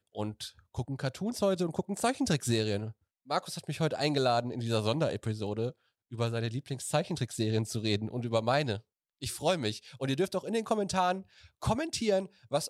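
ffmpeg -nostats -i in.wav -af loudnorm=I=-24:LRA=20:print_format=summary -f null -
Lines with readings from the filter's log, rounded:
Input Integrated:    -32.0 LUFS
Input True Peak:     -13.7 dBTP
Input LRA:             0.9 LU
Input Threshold:     -42.2 LUFS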